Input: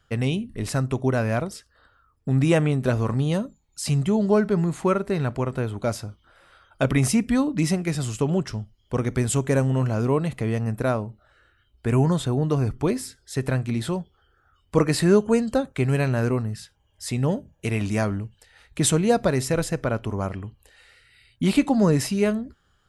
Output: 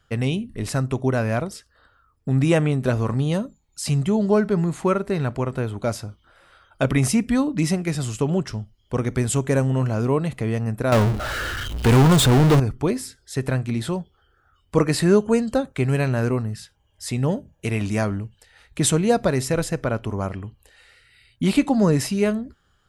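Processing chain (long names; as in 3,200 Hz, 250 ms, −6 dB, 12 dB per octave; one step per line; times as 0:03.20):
0:10.92–0:12.60: power curve on the samples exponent 0.35
level +1 dB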